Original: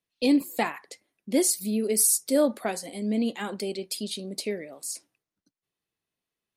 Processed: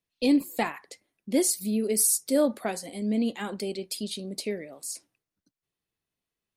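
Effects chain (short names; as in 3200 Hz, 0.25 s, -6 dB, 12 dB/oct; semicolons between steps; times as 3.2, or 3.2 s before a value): low shelf 110 Hz +8 dB; gain -1.5 dB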